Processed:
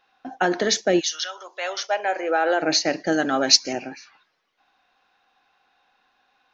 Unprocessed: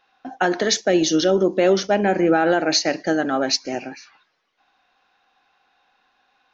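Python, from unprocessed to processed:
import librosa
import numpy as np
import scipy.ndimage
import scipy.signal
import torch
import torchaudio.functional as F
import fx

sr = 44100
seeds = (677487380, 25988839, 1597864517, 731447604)

y = fx.highpass(x, sr, hz=fx.line((0.99, 1300.0), (2.61, 370.0)), slope=24, at=(0.99, 2.61), fade=0.02)
y = fx.high_shelf(y, sr, hz=2500.0, db=10.0, at=(3.12, 3.73))
y = y * 10.0 ** (-1.5 / 20.0)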